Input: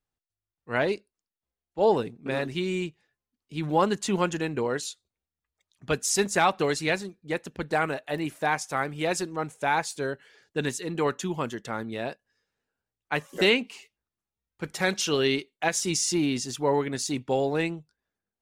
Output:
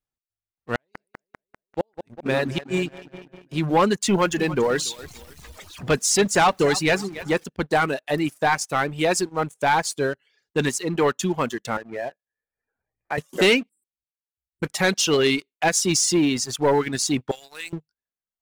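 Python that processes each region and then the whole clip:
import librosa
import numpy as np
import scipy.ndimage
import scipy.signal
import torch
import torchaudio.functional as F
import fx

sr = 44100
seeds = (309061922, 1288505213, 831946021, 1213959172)

y = fx.chain(x, sr, fx.gate_flip(shuts_db=-17.0, range_db=-35),
    fx.echo_filtered(ms=197, feedback_pct=65, hz=3800.0, wet_db=-10.0), at=(0.75, 3.59))
y = fx.chain(y, sr, fx.zero_step(step_db=-37.5),
    fx.high_shelf(hz=11000.0, db=-8.0),
    fx.echo_feedback(ms=284, feedback_pct=34, wet_db=-15), at=(4.09, 7.44))
y = fx.chain(y, sr, fx.cheby_ripple(hz=2500.0, ripple_db=9),
    fx.band_squash(depth_pct=70), at=(11.77, 13.18))
y = fx.chain(y, sr, fx.level_steps(step_db=18),
    fx.brickwall_bandstop(low_hz=370.0, high_hz=7500.0), at=(13.69, 14.63))
y = fx.chain(y, sr, fx.differentiator(),
    fx.env_flatten(amount_pct=50), at=(17.31, 17.73))
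y = fx.dereverb_blind(y, sr, rt60_s=0.79)
y = fx.leveller(y, sr, passes=2)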